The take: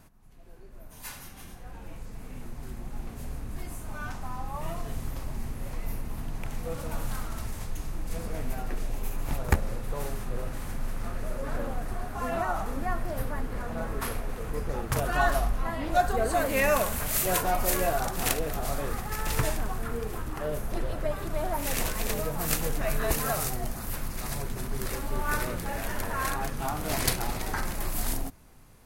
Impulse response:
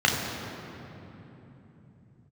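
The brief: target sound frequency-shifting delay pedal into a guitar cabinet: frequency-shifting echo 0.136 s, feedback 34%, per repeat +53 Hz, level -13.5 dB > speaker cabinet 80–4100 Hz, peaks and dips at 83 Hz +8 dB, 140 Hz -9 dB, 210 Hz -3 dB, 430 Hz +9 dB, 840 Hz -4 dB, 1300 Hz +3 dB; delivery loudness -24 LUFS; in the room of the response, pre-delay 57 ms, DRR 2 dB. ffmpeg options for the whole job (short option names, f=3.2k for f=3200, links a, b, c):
-filter_complex "[0:a]asplit=2[a][b];[1:a]atrim=start_sample=2205,adelay=57[c];[b][c]afir=irnorm=-1:irlink=0,volume=-19.5dB[d];[a][d]amix=inputs=2:normalize=0,asplit=4[e][f][g][h];[f]adelay=136,afreqshift=53,volume=-13.5dB[i];[g]adelay=272,afreqshift=106,volume=-22.9dB[j];[h]adelay=408,afreqshift=159,volume=-32.2dB[k];[e][i][j][k]amix=inputs=4:normalize=0,highpass=80,equalizer=f=83:t=q:w=4:g=8,equalizer=f=140:t=q:w=4:g=-9,equalizer=f=210:t=q:w=4:g=-3,equalizer=f=430:t=q:w=4:g=9,equalizer=f=840:t=q:w=4:g=-4,equalizer=f=1.3k:t=q:w=4:g=3,lowpass=f=4.1k:w=0.5412,lowpass=f=4.1k:w=1.3066,volume=5.5dB"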